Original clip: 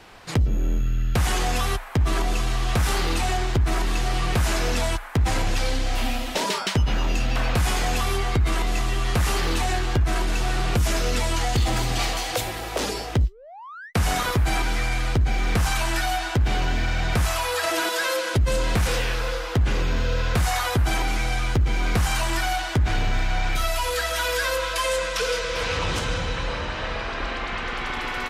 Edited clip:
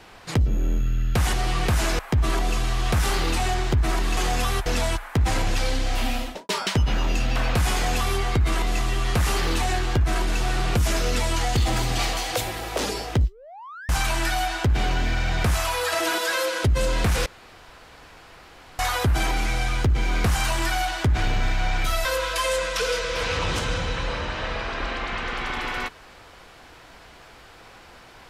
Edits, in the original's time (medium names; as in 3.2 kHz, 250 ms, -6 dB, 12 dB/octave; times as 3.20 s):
1.33–1.82 s: swap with 4.00–4.66 s
6.19–6.49 s: studio fade out
13.89–15.60 s: delete
18.97–20.50 s: room tone
23.76–24.45 s: delete